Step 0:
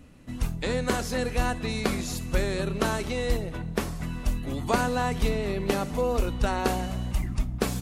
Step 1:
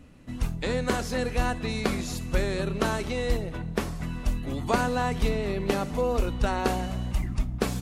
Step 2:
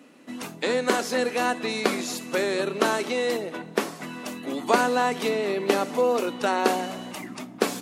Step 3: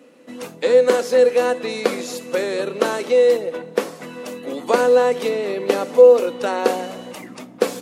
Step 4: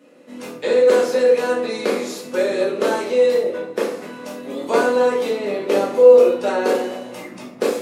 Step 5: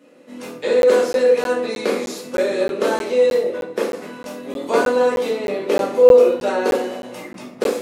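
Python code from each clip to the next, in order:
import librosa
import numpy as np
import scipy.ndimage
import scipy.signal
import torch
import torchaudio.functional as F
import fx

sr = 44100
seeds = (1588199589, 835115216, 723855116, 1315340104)

y1 = fx.high_shelf(x, sr, hz=7800.0, db=-5.0)
y2 = scipy.signal.sosfilt(scipy.signal.butter(4, 250.0, 'highpass', fs=sr, output='sos'), y1)
y2 = y2 * librosa.db_to_amplitude(5.0)
y3 = fx.peak_eq(y2, sr, hz=500.0, db=14.5, octaves=0.22)
y4 = fx.room_shoebox(y3, sr, seeds[0], volume_m3=100.0, walls='mixed', distance_m=1.4)
y4 = y4 * librosa.db_to_amplitude(-6.0)
y5 = fx.buffer_crackle(y4, sr, first_s=0.82, period_s=0.31, block=512, kind='zero')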